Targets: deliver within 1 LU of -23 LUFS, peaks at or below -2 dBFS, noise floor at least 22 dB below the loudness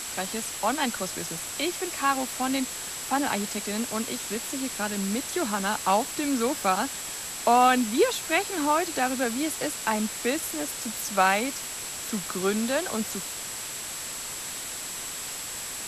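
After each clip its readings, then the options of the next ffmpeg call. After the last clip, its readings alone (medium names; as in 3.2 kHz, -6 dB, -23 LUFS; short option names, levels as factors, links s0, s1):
steady tone 7.7 kHz; tone level -38 dBFS; noise floor -36 dBFS; noise floor target -49 dBFS; loudness -27.0 LUFS; peak level -9.5 dBFS; loudness target -23.0 LUFS
-> -af "bandreject=f=7700:w=30"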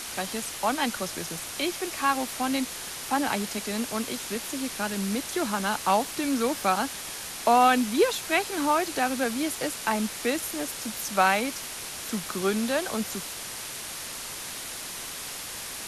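steady tone not found; noise floor -37 dBFS; noise floor target -50 dBFS
-> -af "afftdn=nr=13:nf=-37"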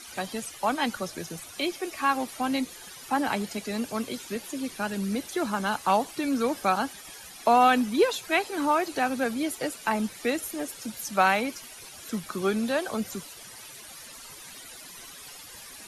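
noise floor -45 dBFS; noise floor target -50 dBFS
-> -af "afftdn=nr=6:nf=-45"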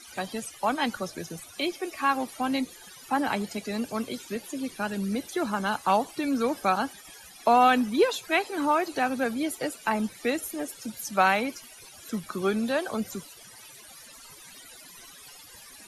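noise floor -49 dBFS; noise floor target -50 dBFS
-> -af "afftdn=nr=6:nf=-49"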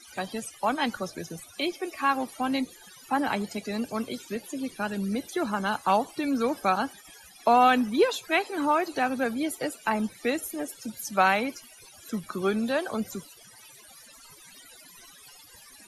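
noise floor -52 dBFS; loudness -28.0 LUFS; peak level -9.5 dBFS; loudness target -23.0 LUFS
-> -af "volume=1.78"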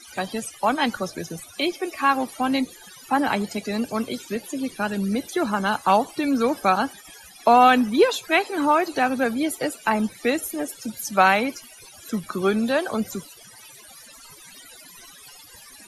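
loudness -23.0 LUFS; peak level -4.5 dBFS; noise floor -47 dBFS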